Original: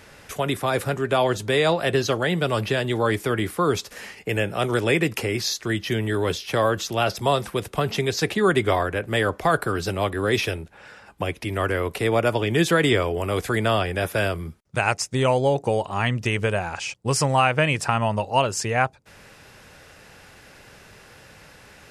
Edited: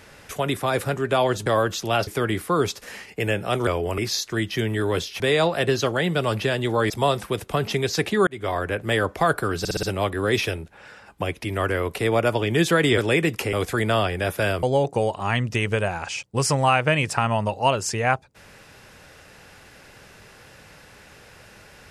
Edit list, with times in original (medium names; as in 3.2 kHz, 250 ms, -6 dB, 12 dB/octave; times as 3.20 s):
1.46–3.16 s: swap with 6.53–7.14 s
4.76–5.31 s: swap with 12.98–13.29 s
8.51–8.91 s: fade in
9.83 s: stutter 0.06 s, 5 plays
14.39–15.34 s: delete